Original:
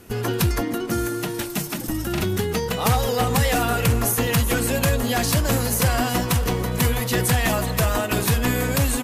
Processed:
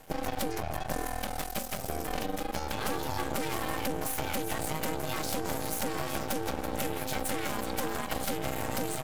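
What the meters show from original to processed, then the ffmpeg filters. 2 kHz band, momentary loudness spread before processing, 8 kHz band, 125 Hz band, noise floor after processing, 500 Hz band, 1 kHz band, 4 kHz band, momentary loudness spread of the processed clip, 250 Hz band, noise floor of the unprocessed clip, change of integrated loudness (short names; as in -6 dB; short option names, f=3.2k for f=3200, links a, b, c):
-11.5 dB, 6 LU, -11.5 dB, -18.5 dB, -37 dBFS, -10.5 dB, -8.0 dB, -11.0 dB, 3 LU, -12.0 dB, -29 dBFS, -12.0 dB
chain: -af "aeval=exprs='val(0)*sin(2*PI*390*n/s)':c=same,acompressor=threshold=-25dB:ratio=6,aeval=exprs='max(val(0),0)':c=same"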